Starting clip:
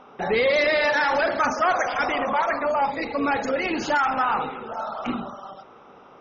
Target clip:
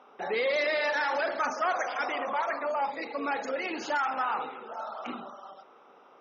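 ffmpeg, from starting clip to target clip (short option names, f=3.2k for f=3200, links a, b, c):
-af "highpass=310,volume=-7dB"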